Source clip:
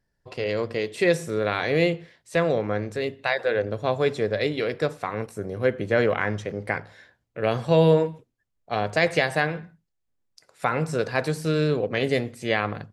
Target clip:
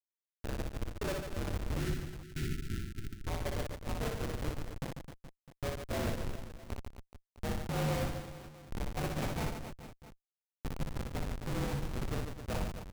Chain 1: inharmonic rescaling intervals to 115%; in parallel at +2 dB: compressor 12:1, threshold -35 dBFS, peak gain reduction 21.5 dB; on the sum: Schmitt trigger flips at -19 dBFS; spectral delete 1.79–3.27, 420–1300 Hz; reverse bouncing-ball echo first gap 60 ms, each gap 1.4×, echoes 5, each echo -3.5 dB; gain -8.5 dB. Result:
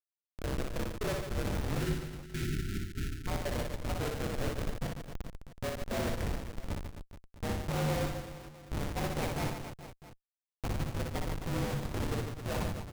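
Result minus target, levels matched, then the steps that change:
compressor: peak gain reduction -8.5 dB
change: compressor 12:1, threshold -44.5 dBFS, peak gain reduction 30 dB

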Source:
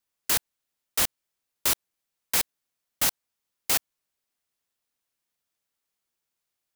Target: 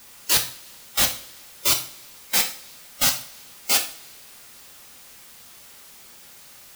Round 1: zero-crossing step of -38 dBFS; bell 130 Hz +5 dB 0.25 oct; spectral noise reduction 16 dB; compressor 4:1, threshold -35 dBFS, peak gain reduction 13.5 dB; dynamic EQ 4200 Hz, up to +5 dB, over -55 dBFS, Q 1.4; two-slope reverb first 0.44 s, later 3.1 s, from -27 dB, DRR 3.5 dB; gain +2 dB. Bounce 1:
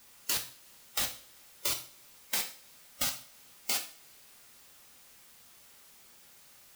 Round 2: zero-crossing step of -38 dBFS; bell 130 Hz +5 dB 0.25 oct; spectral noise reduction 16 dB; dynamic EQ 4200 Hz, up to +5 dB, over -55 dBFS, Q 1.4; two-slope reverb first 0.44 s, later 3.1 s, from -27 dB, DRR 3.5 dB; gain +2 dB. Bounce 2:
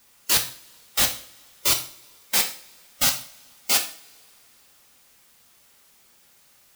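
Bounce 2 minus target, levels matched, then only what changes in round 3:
zero-crossing step: distortion -9 dB
change: zero-crossing step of -27.5 dBFS

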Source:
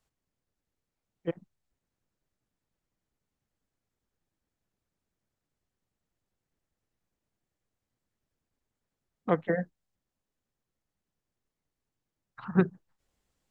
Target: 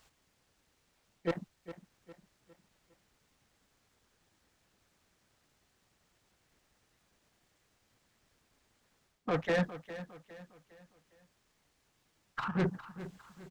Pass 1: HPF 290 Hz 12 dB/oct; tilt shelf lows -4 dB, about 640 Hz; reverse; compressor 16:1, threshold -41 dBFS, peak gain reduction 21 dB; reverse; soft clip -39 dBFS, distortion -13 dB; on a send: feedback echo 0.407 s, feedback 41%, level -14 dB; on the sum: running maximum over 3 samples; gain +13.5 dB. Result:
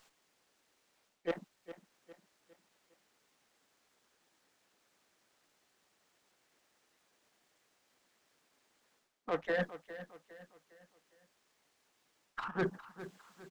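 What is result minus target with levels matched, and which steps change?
compressor: peak gain reduction +6 dB; 250 Hz band -3.0 dB
change: compressor 16:1, threshold -33 dBFS, peak gain reduction 15 dB; remove: HPF 290 Hz 12 dB/oct

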